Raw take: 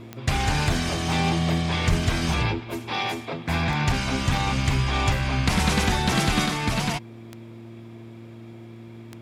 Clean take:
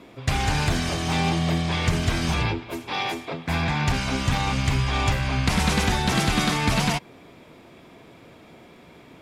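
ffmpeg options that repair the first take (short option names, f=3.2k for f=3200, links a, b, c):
-filter_complex "[0:a]adeclick=t=4,bandreject=f=114.3:t=h:w=4,bandreject=f=228.6:t=h:w=4,bandreject=f=342.9:t=h:w=4,asplit=3[a][b][c];[a]afade=t=out:st=1.89:d=0.02[d];[b]highpass=f=140:w=0.5412,highpass=f=140:w=1.3066,afade=t=in:st=1.89:d=0.02,afade=t=out:st=2.01:d=0.02[e];[c]afade=t=in:st=2.01:d=0.02[f];[d][e][f]amix=inputs=3:normalize=0,asetnsamples=n=441:p=0,asendcmd='6.46 volume volume 3dB',volume=0dB"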